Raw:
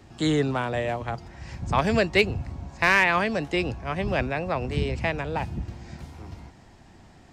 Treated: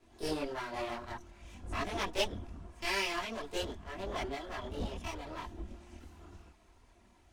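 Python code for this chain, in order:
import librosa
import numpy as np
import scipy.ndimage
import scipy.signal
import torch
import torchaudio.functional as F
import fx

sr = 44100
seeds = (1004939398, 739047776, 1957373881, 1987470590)

y = fx.lower_of_two(x, sr, delay_ms=3.0)
y = fx.formant_shift(y, sr, semitones=4)
y = fx.chorus_voices(y, sr, voices=6, hz=1.0, base_ms=23, depth_ms=3.0, mix_pct=60)
y = y * 10.0 ** (-8.5 / 20.0)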